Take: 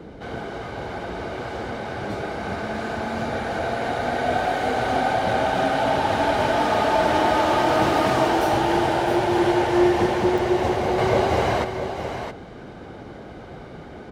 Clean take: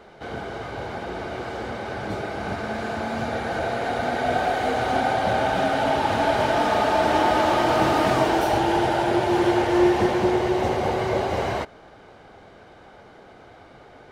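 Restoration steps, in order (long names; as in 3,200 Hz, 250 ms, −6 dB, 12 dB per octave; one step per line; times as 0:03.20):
repair the gap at 0:10.38, 3.4 ms
noise reduction from a noise print 9 dB
echo removal 666 ms −8.5 dB
level correction −4 dB, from 0:10.98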